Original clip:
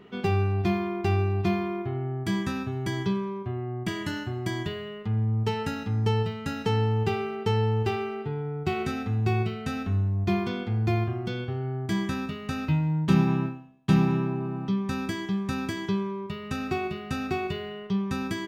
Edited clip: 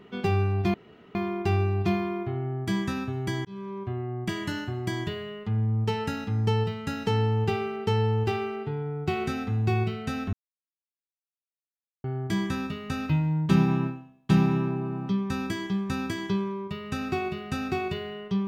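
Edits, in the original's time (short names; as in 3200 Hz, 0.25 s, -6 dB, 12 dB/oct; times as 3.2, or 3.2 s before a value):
0.74 insert room tone 0.41 s
3.04–3.42 fade in
9.92–11.63 mute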